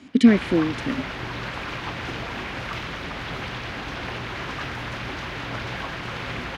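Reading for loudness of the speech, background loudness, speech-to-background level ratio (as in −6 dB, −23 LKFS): −20.5 LKFS, −31.0 LKFS, 10.5 dB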